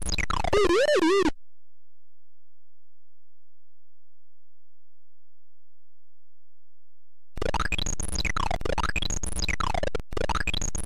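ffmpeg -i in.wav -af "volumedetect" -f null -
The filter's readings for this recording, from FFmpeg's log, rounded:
mean_volume: -27.1 dB
max_volume: -12.5 dB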